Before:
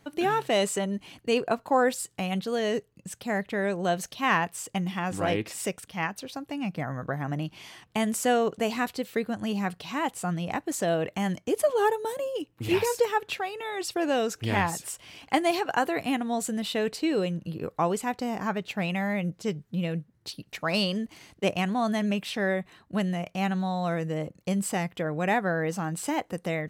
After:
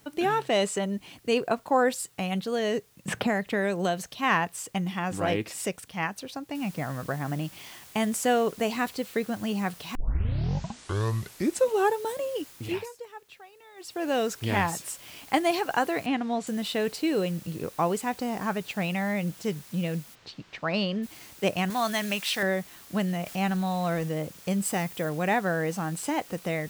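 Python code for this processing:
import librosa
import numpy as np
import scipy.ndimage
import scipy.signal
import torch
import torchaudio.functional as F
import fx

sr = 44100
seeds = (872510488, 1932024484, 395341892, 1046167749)

y = fx.bessel_lowpass(x, sr, hz=9200.0, order=4, at=(0.41, 0.82))
y = fx.band_squash(y, sr, depth_pct=100, at=(3.08, 4.09))
y = fx.noise_floor_step(y, sr, seeds[0], at_s=6.55, before_db=-63, after_db=-50, tilt_db=0.0)
y = fx.lowpass(y, sr, hz=4400.0, slope=12, at=(16.06, 16.47))
y = fx.air_absorb(y, sr, metres=170.0, at=(20.14, 21.02), fade=0.02)
y = fx.tilt_shelf(y, sr, db=-7.5, hz=710.0, at=(21.7, 22.43))
y = fx.zero_step(y, sr, step_db=-42.5, at=(23.26, 24.09))
y = fx.high_shelf(y, sr, hz=11000.0, db=8.5, at=(24.65, 25.09))
y = fx.edit(y, sr, fx.tape_start(start_s=9.95, length_s=1.98),
    fx.fade_down_up(start_s=12.48, length_s=1.7, db=-18.0, fade_s=0.43), tone=tone)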